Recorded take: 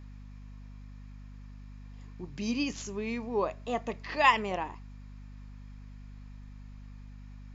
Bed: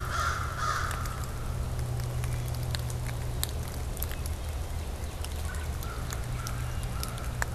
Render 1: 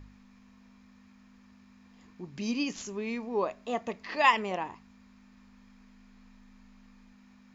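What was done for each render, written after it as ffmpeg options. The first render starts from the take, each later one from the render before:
ffmpeg -i in.wav -af "bandreject=frequency=50:width_type=h:width=4,bandreject=frequency=100:width_type=h:width=4,bandreject=frequency=150:width_type=h:width=4" out.wav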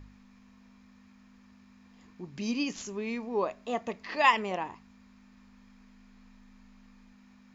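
ffmpeg -i in.wav -af anull out.wav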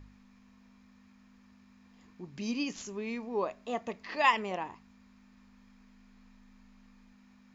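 ffmpeg -i in.wav -af "volume=-2.5dB" out.wav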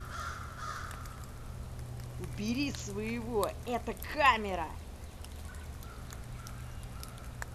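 ffmpeg -i in.wav -i bed.wav -filter_complex "[1:a]volume=-10.5dB[link_01];[0:a][link_01]amix=inputs=2:normalize=0" out.wav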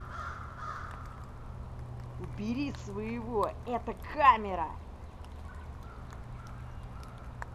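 ffmpeg -i in.wav -af "lowpass=frequency=1700:poles=1,equalizer=frequency=990:width_type=o:width=0.53:gain=7" out.wav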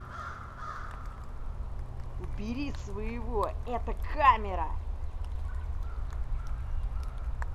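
ffmpeg -i in.wav -af "asubboost=boost=10:cutoff=51" out.wav

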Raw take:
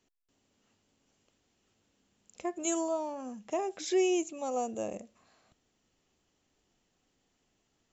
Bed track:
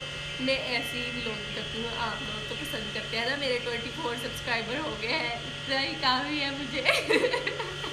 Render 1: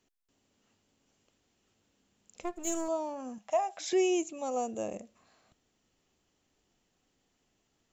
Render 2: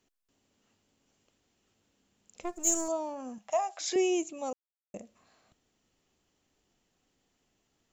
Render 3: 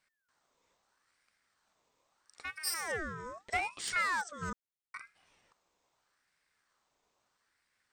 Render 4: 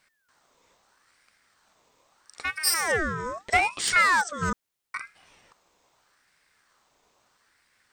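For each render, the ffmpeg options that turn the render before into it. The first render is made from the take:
ffmpeg -i in.wav -filter_complex "[0:a]asplit=3[link_01][link_02][link_03];[link_01]afade=type=out:start_time=2.42:duration=0.02[link_04];[link_02]aeval=exprs='if(lt(val(0),0),0.251*val(0),val(0))':channel_layout=same,afade=type=in:start_time=2.42:duration=0.02,afade=type=out:start_time=2.87:duration=0.02[link_05];[link_03]afade=type=in:start_time=2.87:duration=0.02[link_06];[link_04][link_05][link_06]amix=inputs=3:normalize=0,asettb=1/sr,asplit=3[link_07][link_08][link_09];[link_07]atrim=end=3.384[link_10];[link_08]atrim=start=3.38:end=3.93,asetpts=PTS-STARTPTS,afade=type=in:duration=0.004:curve=qsin,afade=type=out:start_time=0.546:duration=0.004:curve=qsin,lowshelf=frequency=510:width_type=q:width=3:gain=-9.5[link_11];[link_09]atrim=start=3.926[link_12];[link_10][link_11]acrossfade=duration=0.004:curve1=hsin:curve2=qsin[link_13];[link_13][link_12]acrossfade=duration=0.004:curve1=qsin:curve2=hsin" out.wav
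ffmpeg -i in.wav -filter_complex "[0:a]asettb=1/sr,asplit=3[link_01][link_02][link_03];[link_01]atrim=end=2.494[link_04];[link_02]atrim=start=2.49:end=2.92,asetpts=PTS-STARTPTS,afade=type=in:duration=0.004:curve=qsin,afade=type=out:start_time=0.426:duration=0.004:curve=qsin,highshelf=frequency=4500:width_type=q:width=1.5:gain=8[link_05];[link_03]atrim=start=2.916[link_06];[link_04][link_05]acrossfade=duration=0.004:curve1=hsin:curve2=qsin[link_07];[link_07][link_06]acrossfade=duration=0.004:curve1=qsin:curve2=hsin,asettb=1/sr,asplit=3[link_08][link_09][link_10];[link_08]atrim=end=3.524[link_11];[link_09]atrim=start=3.52:end=3.96,asetpts=PTS-STARTPTS,afade=type=in:duration=0.004:curve=qsin,afade=type=out:start_time=0.436:duration=0.004:curve=qsin,highpass=430,equalizer=frequency=1200:width_type=q:width=4:gain=4,equalizer=frequency=4700:width_type=q:width=4:gain=6,equalizer=frequency=6800:width_type=q:width=4:gain=6,lowpass=frequency=8200:width=0.5412,lowpass=frequency=8200:width=1.3066[link_12];[link_10]atrim=start=3.956[link_13];[link_11][link_12]acrossfade=duration=0.004:curve1=hsin:curve2=qsin[link_14];[link_14][link_13]acrossfade=duration=0.004:curve1=qsin:curve2=hsin,asplit=3[link_15][link_16][link_17];[link_15]atrim=end=4.53,asetpts=PTS-STARTPTS,afade=type=out:start_time=4.526:duration=0.004:curve=hsin[link_18];[link_16]atrim=start=4.53:end=4.94,asetpts=PTS-STARTPTS,volume=0[link_19];[link_17]atrim=start=4.94,asetpts=PTS-STARTPTS,afade=type=in:duration=0.004:curve=hsin[link_20];[link_18][link_19][link_20]concat=n=3:v=0:a=1" out.wav
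ffmpeg -i in.wav -af "aeval=exprs='clip(val(0),-1,0.0335)':channel_layout=same,aeval=exprs='val(0)*sin(2*PI*1300*n/s+1300*0.45/0.78*sin(2*PI*0.78*n/s))':channel_layout=same" out.wav
ffmpeg -i in.wav -af "volume=11.5dB" out.wav

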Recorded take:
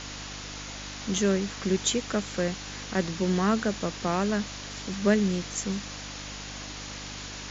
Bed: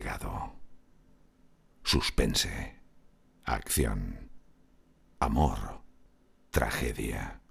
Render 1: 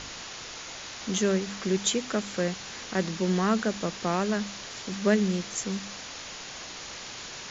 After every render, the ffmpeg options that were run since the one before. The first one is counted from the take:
ffmpeg -i in.wav -af "bandreject=frequency=50:width_type=h:width=4,bandreject=frequency=100:width_type=h:width=4,bandreject=frequency=150:width_type=h:width=4,bandreject=frequency=200:width_type=h:width=4,bandreject=frequency=250:width_type=h:width=4,bandreject=frequency=300:width_type=h:width=4" out.wav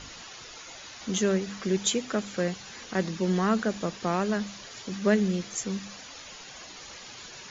ffmpeg -i in.wav -af "afftdn=noise_reduction=9:noise_floor=-41" out.wav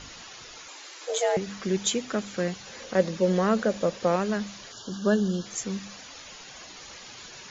ffmpeg -i in.wav -filter_complex "[0:a]asettb=1/sr,asplit=3[link_01][link_02][link_03];[link_01]atrim=end=0.684[link_04];[link_02]atrim=start=0.68:end=1.37,asetpts=PTS-STARTPTS,afade=type=in:duration=0.004:curve=qsin,afade=type=out:start_time=0.686:duration=0.004:curve=qsin,afreqshift=260[link_05];[link_03]atrim=start=1.366[link_06];[link_04][link_05]acrossfade=duration=0.004:curve1=hsin:curve2=qsin[link_07];[link_07][link_06]acrossfade=duration=0.004:curve1=qsin:curve2=hsin,asettb=1/sr,asplit=3[link_08][link_09][link_10];[link_08]atrim=end=2.664[link_11];[link_09]atrim=start=2.66:end=4.16,asetpts=PTS-STARTPTS,afade=type=in:duration=0.004:curve=qsin,afade=type=out:start_time=1.496:duration=0.004:curve=qsin,equalizer=frequency=540:width_type=o:width=0.36:gain=13[link_12];[link_10]atrim=start=4.156[link_13];[link_11][link_12]acrossfade=duration=0.004:curve1=hsin:curve2=qsin[link_14];[link_14][link_13]acrossfade=duration=0.004:curve1=qsin:curve2=hsin,asettb=1/sr,asplit=3[link_15][link_16][link_17];[link_15]atrim=end=4.724[link_18];[link_16]atrim=start=4.72:end=5.46,asetpts=PTS-STARTPTS,afade=type=in:duration=0.004:curve=qsin,afade=type=out:start_time=0.736:duration=0.004:curve=qsin,asuperstop=centerf=2200:order=20:qfactor=2.1[link_19];[link_17]atrim=start=5.456[link_20];[link_18][link_19]acrossfade=duration=0.004:curve1=hsin:curve2=qsin[link_21];[link_21][link_20]acrossfade=duration=0.004:curve1=qsin:curve2=hsin" out.wav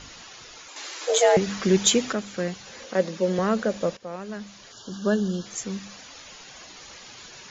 ffmpeg -i in.wav -filter_complex "[0:a]asettb=1/sr,asplit=3[link_01][link_02][link_03];[link_01]atrim=end=0.764[link_04];[link_02]atrim=start=0.76:end=2.13,asetpts=PTS-STARTPTS,afade=type=in:duration=0.004:curve=qsin,afade=type=out:start_time=1.366:duration=0.004:curve=qsin,acontrast=87[link_05];[link_03]atrim=start=2.126[link_06];[link_04][link_05]acrossfade=duration=0.004:curve1=hsin:curve2=qsin[link_07];[link_07][link_06]acrossfade=duration=0.004:curve1=qsin:curve2=hsin,asettb=1/sr,asplit=3[link_08][link_09][link_10];[link_08]atrim=end=2.854[link_11];[link_09]atrim=start=2.85:end=3.39,asetpts=PTS-STARTPTS,afade=type=in:duration=0.004:curve=qsin,afade=type=out:start_time=0.536:duration=0.004:curve=qsin,highpass=170[link_12];[link_10]atrim=start=3.386[link_13];[link_11][link_12]acrossfade=duration=0.004:curve1=hsin:curve2=qsin[link_14];[link_14][link_13]acrossfade=duration=0.004:curve1=qsin:curve2=hsin,asplit=2[link_15][link_16];[link_15]atrim=end=3.97,asetpts=PTS-STARTPTS,afade=type=out:start_time=3.966:duration=0.004:curve=hsin:silence=0.149624[link_17];[link_16]atrim=start=3.97,asetpts=PTS-STARTPTS,afade=type=in:duration=1.08:silence=0.149624[link_18];[link_17][link_18]concat=n=2:v=0:a=1" out.wav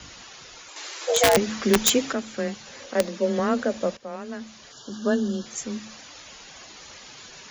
ffmpeg -i in.wav -af "aeval=exprs='(mod(2.99*val(0)+1,2)-1)/2.99':channel_layout=same,afreqshift=18" out.wav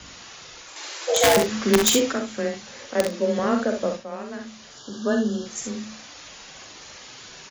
ffmpeg -i in.wav -filter_complex "[0:a]asplit=2[link_01][link_02];[link_02]adelay=38,volume=-13dB[link_03];[link_01][link_03]amix=inputs=2:normalize=0,asplit=2[link_04][link_05];[link_05]aecho=0:1:46|64:0.355|0.501[link_06];[link_04][link_06]amix=inputs=2:normalize=0" out.wav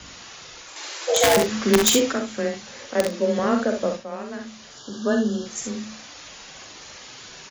ffmpeg -i in.wav -af "volume=1dB,alimiter=limit=-3dB:level=0:latency=1" out.wav

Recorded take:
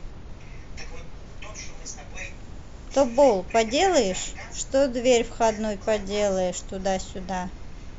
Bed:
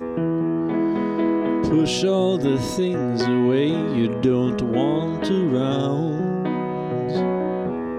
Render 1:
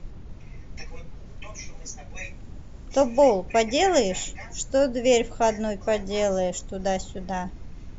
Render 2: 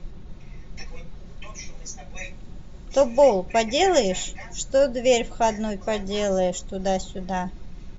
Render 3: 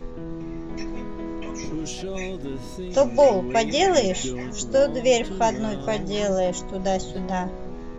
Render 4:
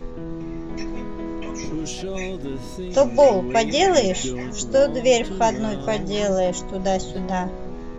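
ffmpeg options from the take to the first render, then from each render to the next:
ffmpeg -i in.wav -af "afftdn=noise_reduction=7:noise_floor=-41" out.wav
ffmpeg -i in.wav -af "equalizer=frequency=3800:width=4.7:gain=5.5,aecho=1:1:5.5:0.4" out.wav
ffmpeg -i in.wav -i bed.wav -filter_complex "[1:a]volume=-12.5dB[link_01];[0:a][link_01]amix=inputs=2:normalize=0" out.wav
ffmpeg -i in.wav -af "volume=2dB" out.wav

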